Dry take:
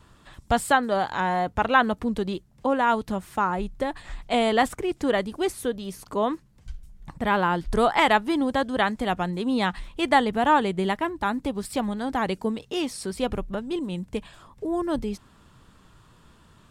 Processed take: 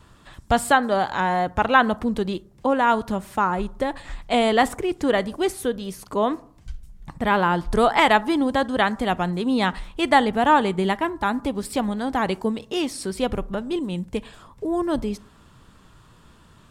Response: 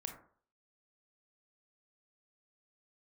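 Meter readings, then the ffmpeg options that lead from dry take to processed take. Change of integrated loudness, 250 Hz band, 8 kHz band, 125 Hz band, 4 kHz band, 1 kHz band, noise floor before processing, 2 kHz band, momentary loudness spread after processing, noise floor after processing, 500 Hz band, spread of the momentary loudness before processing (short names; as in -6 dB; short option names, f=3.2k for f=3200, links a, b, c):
+3.0 dB, +3.0 dB, +3.0 dB, +3.0 dB, +3.0 dB, +3.0 dB, -56 dBFS, +3.0 dB, 10 LU, -52 dBFS, +3.0 dB, 10 LU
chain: -filter_complex "[0:a]asplit=2[a][b];[1:a]atrim=start_sample=2205,asetrate=38808,aresample=44100[c];[b][c]afir=irnorm=-1:irlink=0,volume=-13dB[d];[a][d]amix=inputs=2:normalize=0,volume=1.5dB"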